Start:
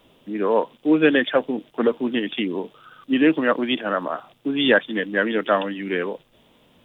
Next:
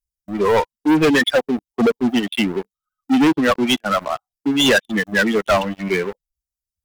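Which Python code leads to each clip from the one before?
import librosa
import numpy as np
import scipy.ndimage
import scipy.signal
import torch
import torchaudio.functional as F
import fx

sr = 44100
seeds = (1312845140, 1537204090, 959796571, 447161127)

y = fx.bin_expand(x, sr, power=2.0)
y = fx.leveller(y, sr, passes=5)
y = y * 10.0 ** (-3.5 / 20.0)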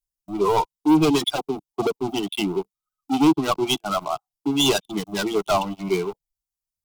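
y = fx.fixed_phaser(x, sr, hz=350.0, stages=8)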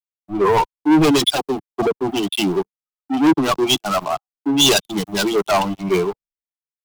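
y = fx.leveller(x, sr, passes=3)
y = fx.band_widen(y, sr, depth_pct=70)
y = y * 10.0 ** (-3.0 / 20.0)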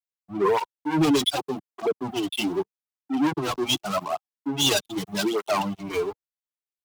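y = fx.flanger_cancel(x, sr, hz=0.83, depth_ms=6.2)
y = y * 10.0 ** (-4.0 / 20.0)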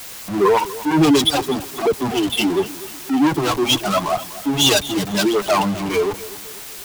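y = x + 0.5 * 10.0 ** (-29.0 / 20.0) * np.sign(x)
y = fx.echo_feedback(y, sr, ms=246, feedback_pct=40, wet_db=-17)
y = y * 10.0 ** (5.5 / 20.0)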